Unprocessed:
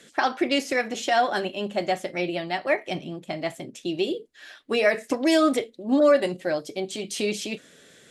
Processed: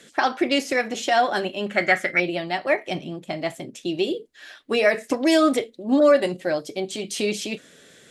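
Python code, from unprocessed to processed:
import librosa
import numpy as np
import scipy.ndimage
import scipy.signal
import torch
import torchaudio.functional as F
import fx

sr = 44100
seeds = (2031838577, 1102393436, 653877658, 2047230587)

y = fx.band_shelf(x, sr, hz=1700.0, db=15.0, octaves=1.0, at=(1.66, 2.2))
y = y * librosa.db_to_amplitude(2.0)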